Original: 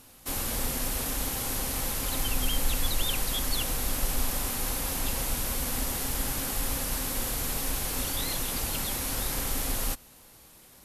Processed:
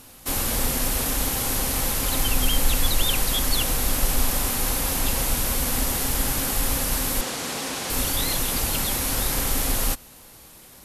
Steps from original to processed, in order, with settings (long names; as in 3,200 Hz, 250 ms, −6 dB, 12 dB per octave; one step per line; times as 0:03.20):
0:07.21–0:07.90: band-pass filter 200–7,500 Hz
level +6.5 dB